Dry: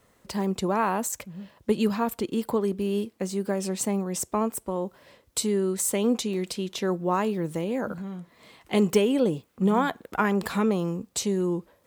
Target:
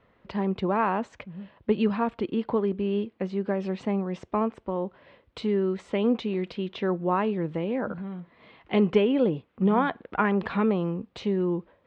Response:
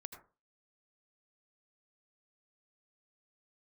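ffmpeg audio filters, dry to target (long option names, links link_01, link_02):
-af "lowpass=frequency=3200:width=0.5412,lowpass=frequency=3200:width=1.3066"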